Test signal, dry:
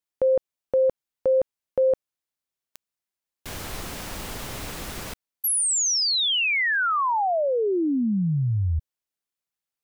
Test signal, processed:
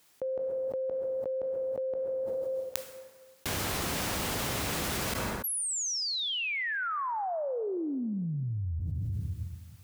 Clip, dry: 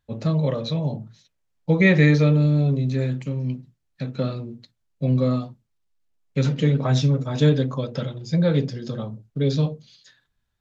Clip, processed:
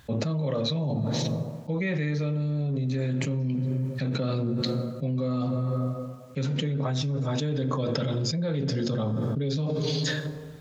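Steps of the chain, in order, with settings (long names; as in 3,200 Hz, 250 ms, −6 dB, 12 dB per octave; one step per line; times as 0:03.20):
high-pass filter 65 Hz
dense smooth reverb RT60 1.6 s, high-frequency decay 0.55×, DRR 16 dB
envelope flattener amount 100%
level −14.5 dB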